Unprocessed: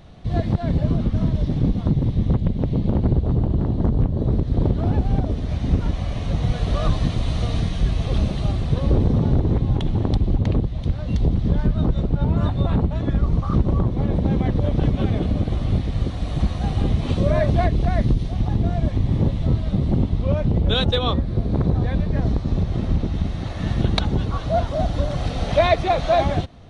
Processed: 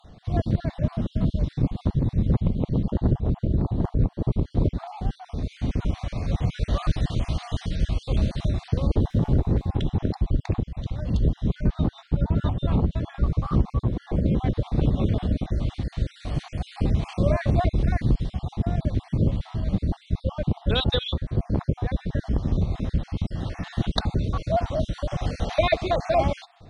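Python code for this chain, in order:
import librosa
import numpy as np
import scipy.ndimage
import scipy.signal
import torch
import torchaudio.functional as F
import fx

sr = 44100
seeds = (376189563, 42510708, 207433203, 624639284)

y = fx.spec_dropout(x, sr, seeds[0], share_pct=37)
y = fx.running_max(y, sr, window=3, at=(9.1, 9.68))
y = y * 10.0 ** (-2.0 / 20.0)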